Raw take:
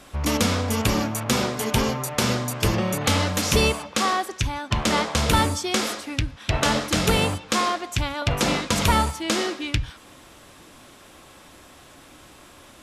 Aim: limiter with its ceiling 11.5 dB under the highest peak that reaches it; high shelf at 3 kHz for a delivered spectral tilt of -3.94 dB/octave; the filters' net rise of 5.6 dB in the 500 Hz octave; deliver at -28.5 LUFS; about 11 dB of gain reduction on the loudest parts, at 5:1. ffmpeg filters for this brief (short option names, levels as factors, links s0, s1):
-af "equalizer=f=500:t=o:g=6.5,highshelf=f=3000:g=7.5,acompressor=threshold=0.0501:ratio=5,volume=1.19,alimiter=limit=0.133:level=0:latency=1"